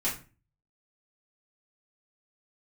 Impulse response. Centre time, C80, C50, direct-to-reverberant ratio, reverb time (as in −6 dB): 26 ms, 14.0 dB, 8.5 dB, −8.5 dB, 0.35 s